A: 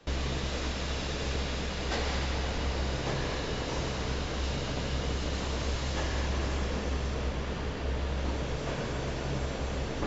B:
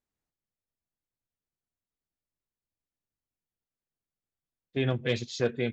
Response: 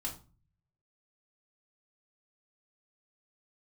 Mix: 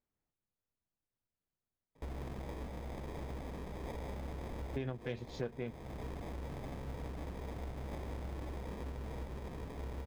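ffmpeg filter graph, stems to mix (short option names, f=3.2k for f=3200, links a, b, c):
-filter_complex "[0:a]acrusher=samples=31:mix=1:aa=0.000001,adelay=1950,volume=-9dB[a];[1:a]highshelf=f=4.3k:g=-9.5,acontrast=89,aeval=exprs='0.398*(cos(1*acos(clip(val(0)/0.398,-1,1)))-cos(1*PI/2))+0.0562*(cos(3*acos(clip(val(0)/0.398,-1,1)))-cos(3*PI/2))':c=same,volume=-1.5dB[b];[a][b]amix=inputs=2:normalize=0,highshelf=f=2.6k:g=-8.5,acompressor=threshold=-38dB:ratio=4"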